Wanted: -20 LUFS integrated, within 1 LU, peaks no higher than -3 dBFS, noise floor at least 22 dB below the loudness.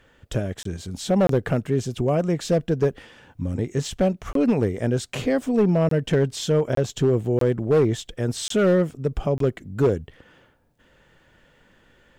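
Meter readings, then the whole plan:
clipped samples 0.9%; clipping level -12.5 dBFS; dropouts 8; longest dropout 23 ms; loudness -23.0 LUFS; peak level -12.5 dBFS; loudness target -20.0 LUFS
-> clip repair -12.5 dBFS; interpolate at 0.63/1.27/4.33/5.89/6.75/7.39/8.48/9.38 s, 23 ms; trim +3 dB

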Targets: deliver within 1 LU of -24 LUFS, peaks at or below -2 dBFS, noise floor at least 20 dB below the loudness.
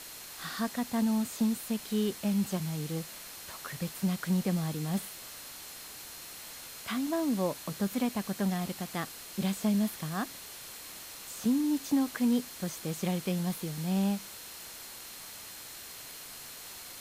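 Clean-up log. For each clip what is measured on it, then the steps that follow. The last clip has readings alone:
steady tone 4.2 kHz; tone level -55 dBFS; noise floor -46 dBFS; noise floor target -54 dBFS; loudness -33.5 LUFS; peak level -16.5 dBFS; loudness target -24.0 LUFS
-> band-stop 4.2 kHz, Q 30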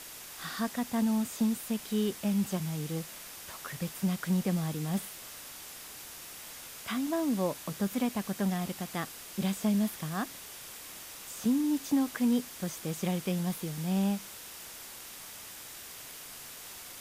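steady tone not found; noise floor -46 dBFS; noise floor target -54 dBFS
-> noise reduction 8 dB, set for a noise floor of -46 dBFS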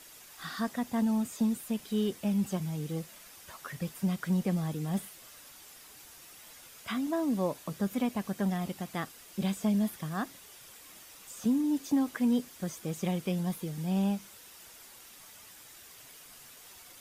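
noise floor -53 dBFS; loudness -32.0 LUFS; peak level -17.5 dBFS; loudness target -24.0 LUFS
-> trim +8 dB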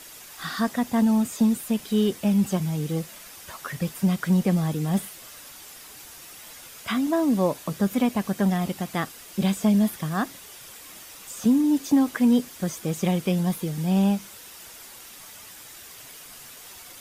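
loudness -24.0 LUFS; peak level -9.5 dBFS; noise floor -45 dBFS

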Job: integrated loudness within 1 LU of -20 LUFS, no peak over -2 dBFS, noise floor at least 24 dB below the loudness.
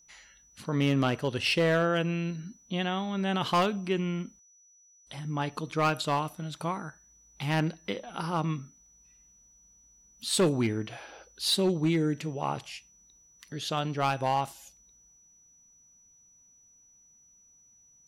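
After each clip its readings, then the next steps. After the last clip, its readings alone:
clipped samples 0.5%; clipping level -19.0 dBFS; steady tone 5.9 kHz; tone level -58 dBFS; loudness -29.5 LUFS; peak level -19.0 dBFS; loudness target -20.0 LUFS
-> clip repair -19 dBFS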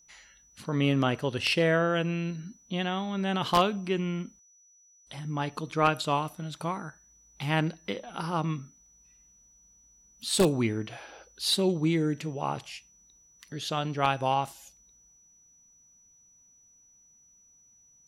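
clipped samples 0.0%; steady tone 5.9 kHz; tone level -58 dBFS
-> band-stop 5.9 kHz, Q 30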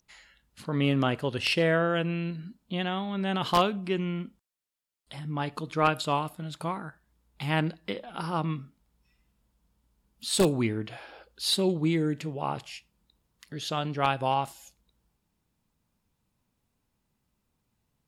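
steady tone not found; loudness -29.0 LUFS; peak level -10.0 dBFS; loudness target -20.0 LUFS
-> trim +9 dB; peak limiter -2 dBFS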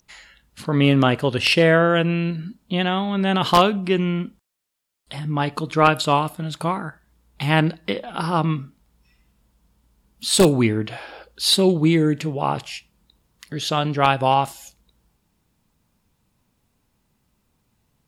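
loudness -20.0 LUFS; peak level -2.0 dBFS; noise floor -70 dBFS

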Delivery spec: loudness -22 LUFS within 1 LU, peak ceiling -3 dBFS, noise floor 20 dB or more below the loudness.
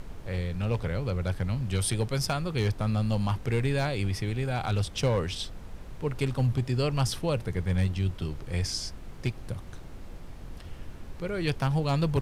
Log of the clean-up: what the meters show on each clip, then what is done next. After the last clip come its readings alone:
clipped samples 0.3%; clipping level -18.5 dBFS; noise floor -43 dBFS; noise floor target -50 dBFS; loudness -29.5 LUFS; peak level -18.5 dBFS; loudness target -22.0 LUFS
-> clip repair -18.5 dBFS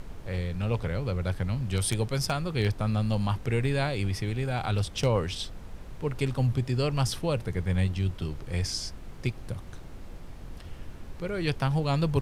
clipped samples 0.0%; noise floor -43 dBFS; noise floor target -50 dBFS
-> noise print and reduce 7 dB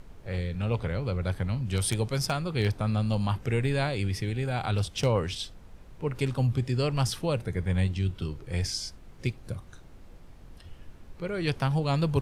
noise floor -49 dBFS; noise floor target -50 dBFS
-> noise print and reduce 6 dB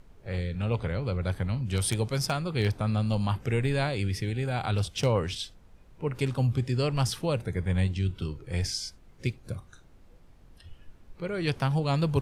noise floor -55 dBFS; loudness -29.5 LUFS; peak level -11.0 dBFS; loudness target -22.0 LUFS
-> trim +7.5 dB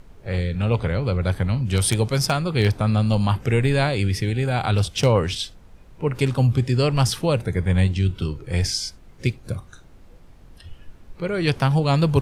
loudness -22.0 LUFS; peak level -3.5 dBFS; noise floor -48 dBFS

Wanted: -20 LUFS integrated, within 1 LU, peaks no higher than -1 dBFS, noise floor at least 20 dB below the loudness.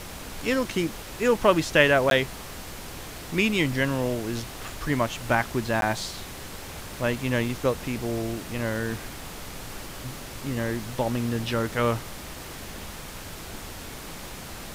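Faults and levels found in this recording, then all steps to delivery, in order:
dropouts 2; longest dropout 12 ms; noise floor -39 dBFS; noise floor target -46 dBFS; loudness -26.0 LUFS; peak level -5.0 dBFS; loudness target -20.0 LUFS
-> interpolate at 2.10/5.81 s, 12 ms; noise print and reduce 7 dB; trim +6 dB; peak limiter -1 dBFS

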